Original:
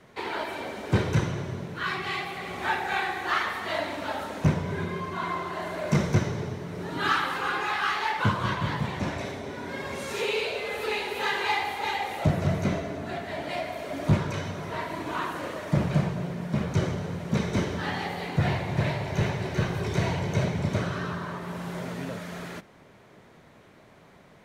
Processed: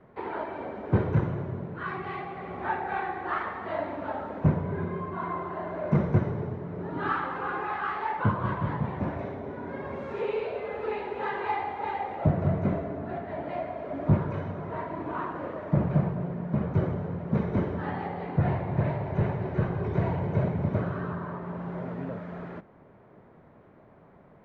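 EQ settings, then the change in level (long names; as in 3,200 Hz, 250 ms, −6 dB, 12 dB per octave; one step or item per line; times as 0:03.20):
low-pass filter 1,200 Hz 12 dB per octave
0.0 dB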